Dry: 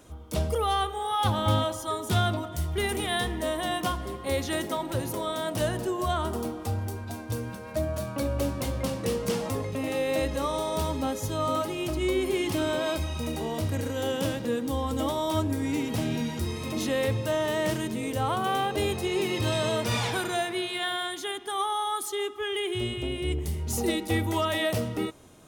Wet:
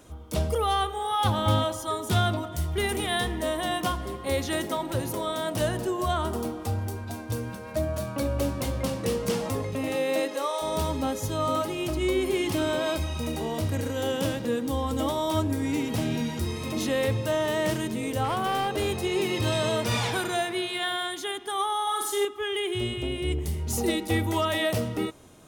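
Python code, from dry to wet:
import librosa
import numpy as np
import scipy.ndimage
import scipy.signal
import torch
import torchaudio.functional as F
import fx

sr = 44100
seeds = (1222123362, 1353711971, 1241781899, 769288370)

y = fx.highpass(x, sr, hz=fx.line((9.96, 130.0), (10.61, 550.0)), slope=24, at=(9.96, 10.61), fade=0.02)
y = fx.clip_hard(y, sr, threshold_db=-23.5, at=(18.24, 18.95))
y = fx.room_flutter(y, sr, wall_m=7.2, rt60_s=0.71, at=(21.83, 22.25))
y = y * librosa.db_to_amplitude(1.0)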